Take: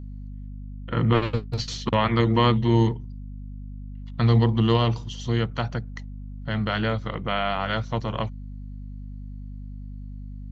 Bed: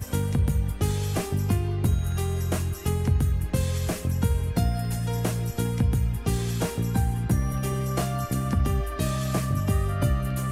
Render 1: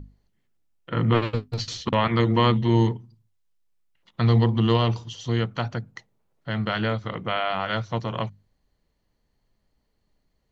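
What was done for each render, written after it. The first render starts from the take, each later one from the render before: hum notches 50/100/150/200/250 Hz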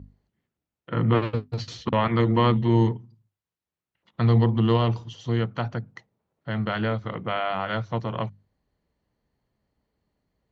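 high-pass 57 Hz; treble shelf 3.4 kHz -10.5 dB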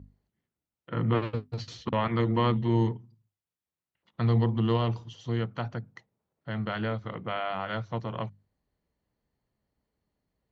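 trim -5 dB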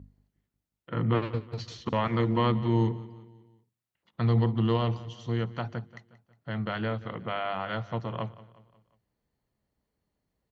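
feedback delay 180 ms, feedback 48%, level -18.5 dB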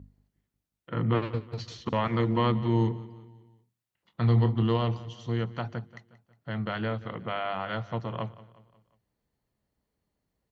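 3.20–4.63 s: doubling 25 ms -10 dB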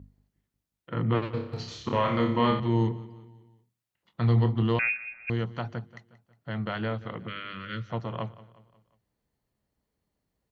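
1.31–2.60 s: flutter echo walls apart 5.1 m, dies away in 0.49 s; 4.79–5.30 s: frequency inversion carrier 2.6 kHz; 7.27–7.90 s: Butterworth band-stop 770 Hz, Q 0.75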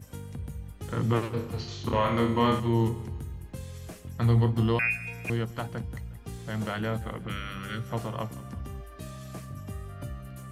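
add bed -14.5 dB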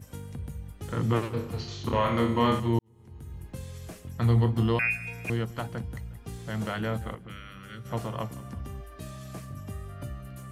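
2.79–3.40 s: fade in quadratic; 7.15–7.85 s: gain -8 dB

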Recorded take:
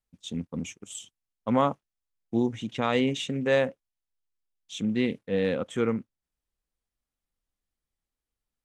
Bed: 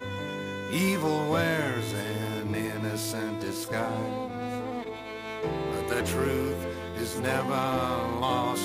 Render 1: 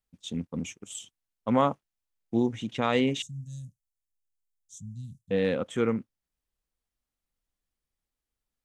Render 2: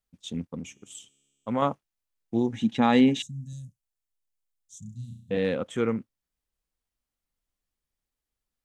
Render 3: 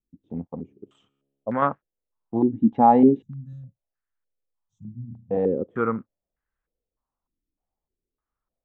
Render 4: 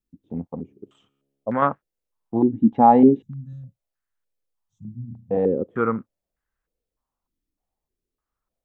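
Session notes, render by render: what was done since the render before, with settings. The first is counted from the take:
3.22–5.31 s: elliptic band-stop 130–6600 Hz, stop band 50 dB
0.55–1.62 s: feedback comb 69 Hz, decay 2 s, mix 40%; 2.52–3.53 s: small resonant body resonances 230/820/1700/3900 Hz, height 11 dB; 4.79–5.37 s: flutter echo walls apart 5.8 m, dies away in 0.53 s
step-sequenced low-pass 3.3 Hz 310–1600 Hz
trim +2 dB

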